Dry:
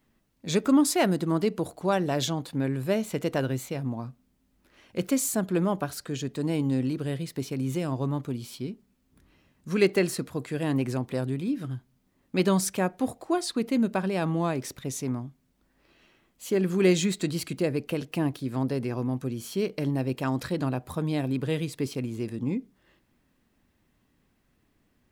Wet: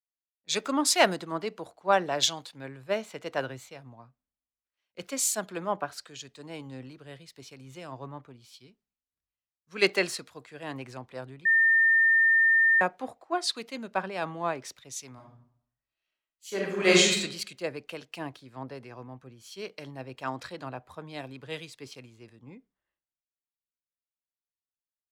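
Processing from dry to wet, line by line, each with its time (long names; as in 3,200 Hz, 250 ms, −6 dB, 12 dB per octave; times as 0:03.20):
0:11.45–0:12.81: beep over 1,810 Hz −21 dBFS
0:15.13–0:17.18: thrown reverb, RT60 1 s, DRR −2 dB
whole clip: three-way crossover with the lows and the highs turned down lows −14 dB, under 540 Hz, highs −12 dB, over 7,400 Hz; multiband upward and downward expander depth 100%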